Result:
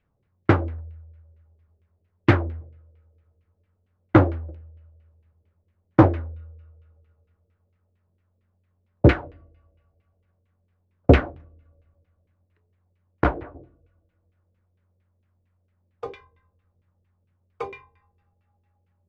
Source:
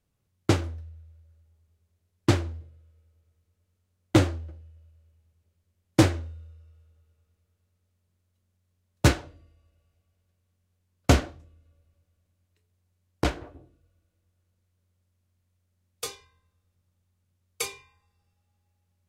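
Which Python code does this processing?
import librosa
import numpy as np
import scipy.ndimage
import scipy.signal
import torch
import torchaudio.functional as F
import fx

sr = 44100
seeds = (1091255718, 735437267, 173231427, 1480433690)

y = fx.filter_lfo_lowpass(x, sr, shape='saw_down', hz=4.4, low_hz=400.0, high_hz=2600.0, q=2.1)
y = y * librosa.db_to_amplitude(4.0)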